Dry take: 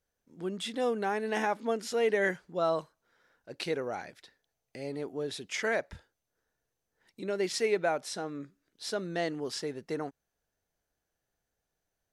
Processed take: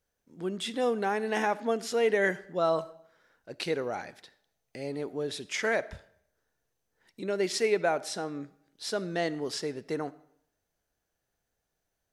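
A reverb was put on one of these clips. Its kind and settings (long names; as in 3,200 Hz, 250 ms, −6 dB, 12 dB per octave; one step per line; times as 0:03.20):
comb and all-pass reverb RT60 0.71 s, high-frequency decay 0.85×, pre-delay 20 ms, DRR 18.5 dB
level +2 dB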